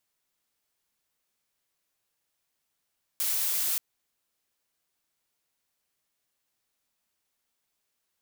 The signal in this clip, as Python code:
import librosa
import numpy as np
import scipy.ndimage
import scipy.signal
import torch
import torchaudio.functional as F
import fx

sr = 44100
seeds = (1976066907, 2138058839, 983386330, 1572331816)

y = fx.noise_colour(sr, seeds[0], length_s=0.58, colour='blue', level_db=-28.0)